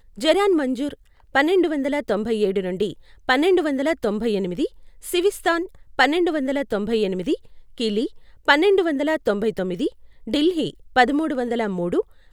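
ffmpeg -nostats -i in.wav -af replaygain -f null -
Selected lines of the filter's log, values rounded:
track_gain = +0.6 dB
track_peak = 0.606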